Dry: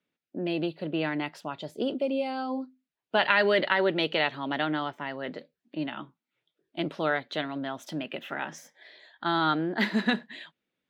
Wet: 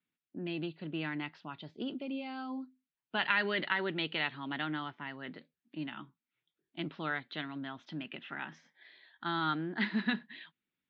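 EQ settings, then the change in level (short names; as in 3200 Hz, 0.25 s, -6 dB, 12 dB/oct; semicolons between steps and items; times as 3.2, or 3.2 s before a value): LPF 4400 Hz 24 dB/oct; air absorption 75 m; bell 560 Hz -13 dB 1 oct; -4.0 dB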